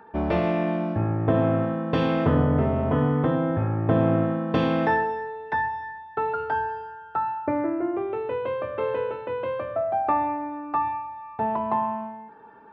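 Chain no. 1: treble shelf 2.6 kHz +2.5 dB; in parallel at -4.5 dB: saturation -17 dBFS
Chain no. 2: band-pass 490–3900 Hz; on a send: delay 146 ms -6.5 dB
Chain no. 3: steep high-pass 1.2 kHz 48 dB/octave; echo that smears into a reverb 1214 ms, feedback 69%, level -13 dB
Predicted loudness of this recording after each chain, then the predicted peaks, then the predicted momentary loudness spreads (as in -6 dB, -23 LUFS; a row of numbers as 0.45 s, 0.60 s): -22.0 LUFS, -28.5 LUFS, -37.0 LUFS; -6.5 dBFS, -12.0 dBFS, -21.0 dBFS; 8 LU, 7 LU, 11 LU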